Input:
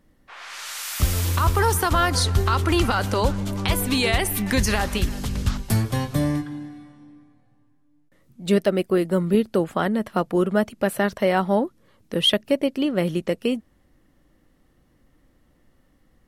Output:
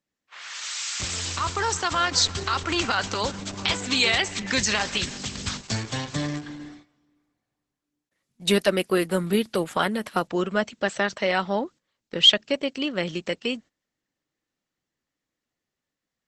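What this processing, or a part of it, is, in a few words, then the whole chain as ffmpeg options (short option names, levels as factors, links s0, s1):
video call: -af "highpass=110,tiltshelf=f=1300:g=-7,dynaudnorm=f=620:g=9:m=3.35,agate=range=0.141:threshold=0.00891:ratio=16:detection=peak,volume=0.794" -ar 48000 -c:a libopus -b:a 12k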